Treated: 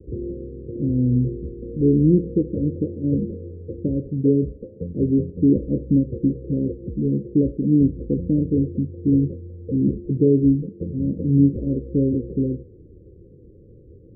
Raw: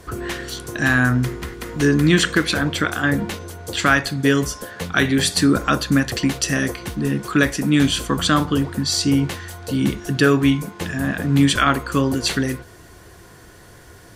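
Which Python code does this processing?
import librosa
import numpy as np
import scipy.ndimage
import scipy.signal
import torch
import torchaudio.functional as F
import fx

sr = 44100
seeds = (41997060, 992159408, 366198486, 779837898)

y = scipy.signal.sosfilt(scipy.signal.butter(16, 530.0, 'lowpass', fs=sr, output='sos'), x)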